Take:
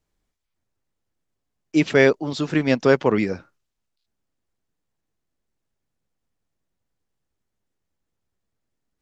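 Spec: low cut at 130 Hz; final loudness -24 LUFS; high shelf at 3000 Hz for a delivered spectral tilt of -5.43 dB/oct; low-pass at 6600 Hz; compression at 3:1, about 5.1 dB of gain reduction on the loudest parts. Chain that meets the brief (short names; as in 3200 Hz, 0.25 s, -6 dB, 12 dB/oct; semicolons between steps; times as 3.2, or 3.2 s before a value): HPF 130 Hz; LPF 6600 Hz; high shelf 3000 Hz -5.5 dB; compressor 3:1, threshold -17 dBFS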